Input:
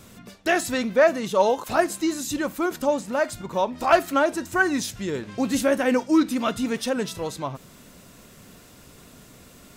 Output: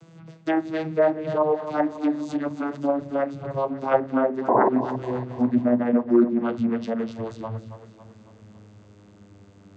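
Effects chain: vocoder on a note that slides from E3, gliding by -9 st; painted sound noise, 4.48–4.69 s, 200–1100 Hz -18 dBFS; low-pass that closes with the level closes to 1.5 kHz, closed at -18 dBFS; two-band feedback delay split 420 Hz, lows 171 ms, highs 275 ms, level -11.5 dB

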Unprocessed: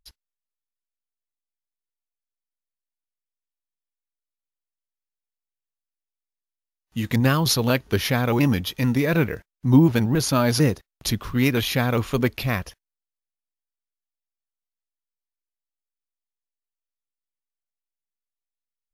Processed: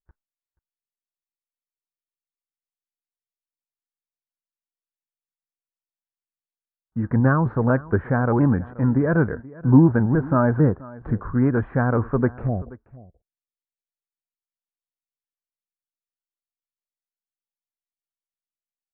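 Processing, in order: Chebyshev low-pass 1.6 kHz, order 5, from 12.47 s 720 Hz; gate with hold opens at -47 dBFS; delay 480 ms -20.5 dB; trim +2 dB

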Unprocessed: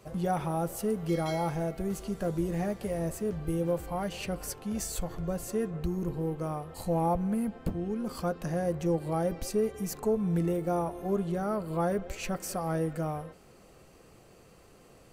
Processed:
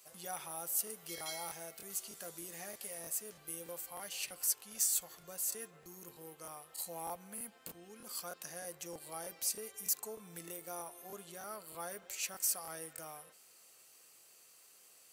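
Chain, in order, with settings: differentiator; crackling interface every 0.31 s, samples 1024, repeat, from 0.85 s; trim +5 dB

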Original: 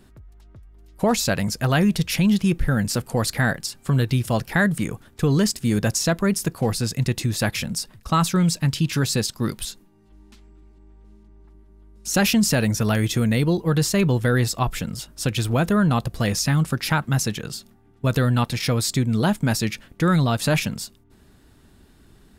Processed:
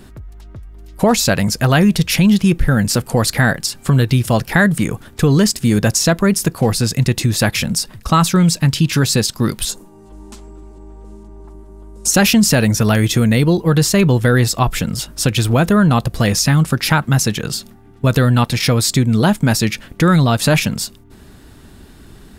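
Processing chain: 9.69–12.11 s: graphic EQ 500/1000/2000/4000/8000 Hz +8/+6/-5/-3/+9 dB; in parallel at +2 dB: compression, threshold -30 dBFS, peak gain reduction 14.5 dB; on the sum: trim +4.5 dB

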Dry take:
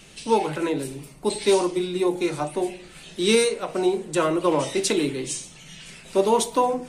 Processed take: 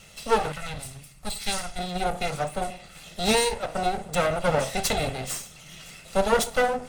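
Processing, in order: comb filter that takes the minimum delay 1.5 ms; 0.52–1.79 s: peaking EQ 450 Hz -14 dB 2.4 oct

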